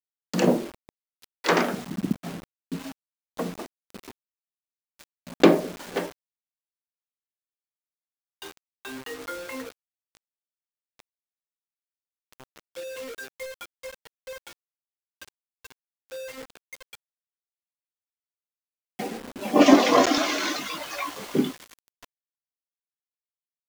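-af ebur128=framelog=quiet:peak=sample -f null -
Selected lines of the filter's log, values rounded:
Integrated loudness:
  I:         -24.7 LUFS
  Threshold: -38.2 LUFS
Loudness range:
  LRA:        22.7 LU
  Threshold: -49.6 LUFS
  LRA low:   -45.6 LUFS
  LRA high:  -22.9 LUFS
Sample peak:
  Peak:       -2.4 dBFS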